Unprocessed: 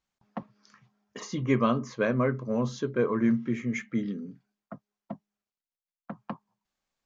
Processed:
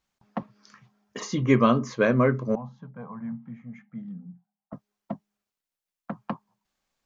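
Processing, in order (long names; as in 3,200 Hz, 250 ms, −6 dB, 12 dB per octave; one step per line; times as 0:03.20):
0:02.55–0:04.73: pair of resonant band-passes 370 Hz, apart 2.2 octaves
level +5 dB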